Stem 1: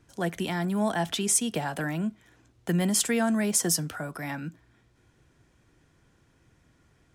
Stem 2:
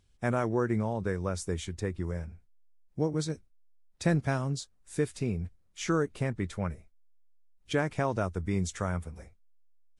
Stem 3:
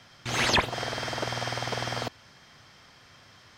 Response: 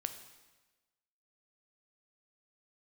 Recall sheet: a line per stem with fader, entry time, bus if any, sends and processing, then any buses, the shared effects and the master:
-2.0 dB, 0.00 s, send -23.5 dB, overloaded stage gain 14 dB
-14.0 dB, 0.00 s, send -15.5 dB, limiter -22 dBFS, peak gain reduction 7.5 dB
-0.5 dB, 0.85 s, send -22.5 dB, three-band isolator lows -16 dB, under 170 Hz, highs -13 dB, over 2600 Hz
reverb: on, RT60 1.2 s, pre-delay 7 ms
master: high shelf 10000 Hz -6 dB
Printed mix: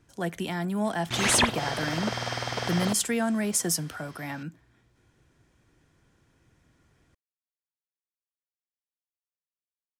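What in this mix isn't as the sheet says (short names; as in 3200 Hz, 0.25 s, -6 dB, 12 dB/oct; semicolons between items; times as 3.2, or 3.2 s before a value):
stem 2: muted; stem 3: missing three-band isolator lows -16 dB, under 170 Hz, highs -13 dB, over 2600 Hz; master: missing high shelf 10000 Hz -6 dB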